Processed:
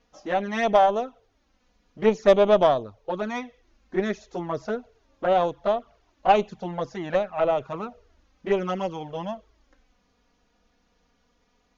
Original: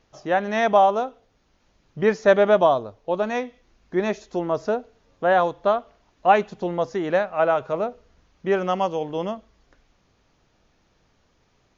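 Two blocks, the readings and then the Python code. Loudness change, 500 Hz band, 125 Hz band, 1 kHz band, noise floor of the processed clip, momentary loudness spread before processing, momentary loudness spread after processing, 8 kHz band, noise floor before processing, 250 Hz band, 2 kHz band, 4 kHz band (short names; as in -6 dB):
-2.5 dB, -2.0 dB, -1.5 dB, -3.0 dB, -68 dBFS, 11 LU, 15 LU, n/a, -65 dBFS, -2.0 dB, -5.5 dB, 0.0 dB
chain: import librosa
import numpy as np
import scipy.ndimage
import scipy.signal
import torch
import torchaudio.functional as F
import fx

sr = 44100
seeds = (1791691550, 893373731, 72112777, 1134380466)

y = fx.env_flanger(x, sr, rest_ms=4.2, full_db=-16.0)
y = fx.cheby_harmonics(y, sr, harmonics=(3, 4), levels_db=(-22, -23), full_scale_db=-6.5)
y = y * librosa.db_to_amplitude(2.0)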